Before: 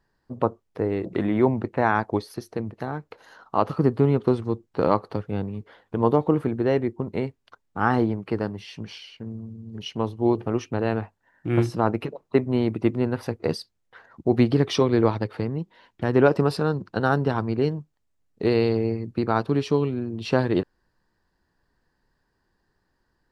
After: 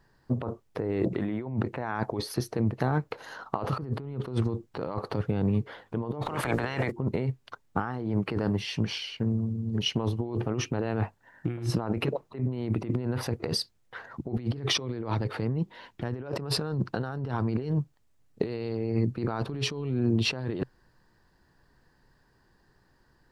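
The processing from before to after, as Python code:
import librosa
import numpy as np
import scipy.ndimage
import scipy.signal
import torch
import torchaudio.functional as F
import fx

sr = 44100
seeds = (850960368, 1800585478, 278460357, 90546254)

y = fx.spec_clip(x, sr, under_db=26, at=(6.21, 6.9), fade=0.02)
y = fx.peak_eq(y, sr, hz=130.0, db=6.5, octaves=0.28)
y = fx.over_compress(y, sr, threshold_db=-30.0, ratio=-1.0)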